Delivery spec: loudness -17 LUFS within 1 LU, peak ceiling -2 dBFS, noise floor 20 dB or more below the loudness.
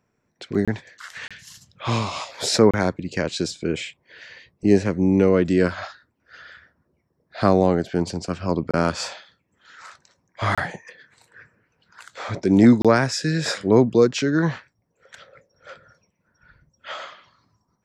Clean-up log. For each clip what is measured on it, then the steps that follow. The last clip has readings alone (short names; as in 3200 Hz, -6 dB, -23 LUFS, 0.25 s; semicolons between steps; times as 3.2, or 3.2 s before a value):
dropouts 6; longest dropout 26 ms; loudness -21.0 LUFS; peak -2.5 dBFS; loudness target -17.0 LUFS
-> interpolate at 0.65/1.28/2.71/8.71/10.55/12.82, 26 ms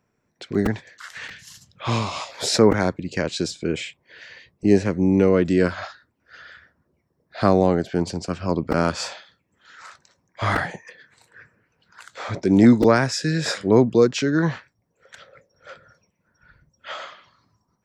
dropouts 0; loudness -21.0 LUFS; peak -2.5 dBFS; loudness target -17.0 LUFS
-> gain +4 dB; limiter -2 dBFS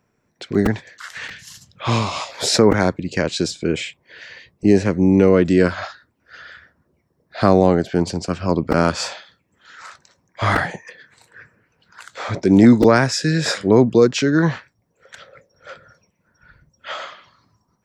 loudness -17.5 LUFS; peak -2.0 dBFS; noise floor -68 dBFS